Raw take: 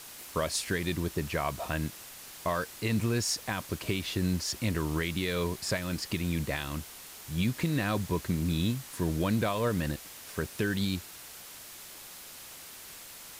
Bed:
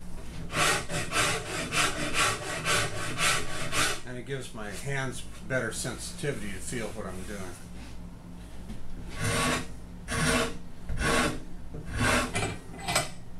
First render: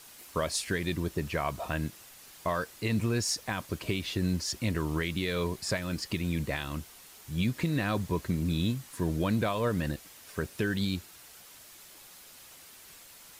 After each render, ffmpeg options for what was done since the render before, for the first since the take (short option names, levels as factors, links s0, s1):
-af "afftdn=nr=6:nf=-47"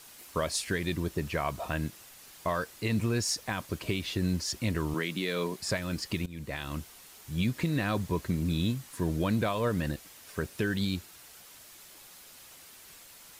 -filter_complex "[0:a]asettb=1/sr,asplit=3[s0][s1][s2];[s0]atrim=end=4.944[s3];[s1]atrim=start=4.94:end=5.6,asetpts=PTS-STARTPTS,afade=t=in:d=0.004:c=qsin,afade=t=out:st=0.656:d=0.004:c=qsin,highpass=f=160:w=0.5412,highpass=f=160:w=1.3066[s4];[s2]atrim=start=5.596[s5];[s3][s4]acrossfade=d=0.004:c1=hsin:c2=qsin[s6];[s6][s5]acrossfade=d=0.004:c1=qsin:c2=hsin,asplit=2[s7][s8];[s7]atrim=end=6.26,asetpts=PTS-STARTPTS,afade=t=out:st=6.256:d=0.004:c=hsin:silence=0.112202[s9];[s8]atrim=start=6.26,asetpts=PTS-STARTPTS,afade=t=in:d=0.46:silence=0.112202[s10];[s9][s10]concat=n=2:v=0:a=1"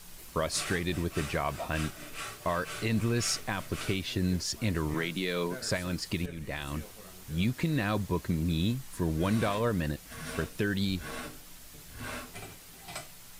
-filter_complex "[1:a]volume=0.188[s0];[0:a][s0]amix=inputs=2:normalize=0"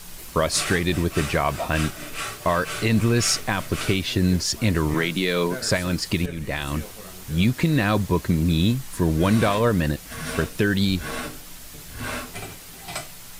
-af "volume=2.82"